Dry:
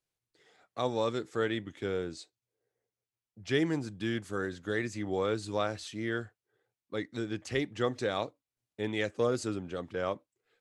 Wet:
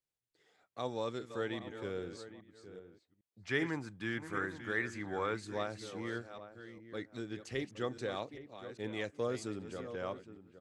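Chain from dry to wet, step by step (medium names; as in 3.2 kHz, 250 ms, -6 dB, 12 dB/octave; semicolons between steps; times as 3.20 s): chunks repeated in reverse 399 ms, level -11 dB; 3.41–5.41 s: high-order bell 1.4 kHz +8 dB; echo from a far wall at 140 m, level -13 dB; trim -7 dB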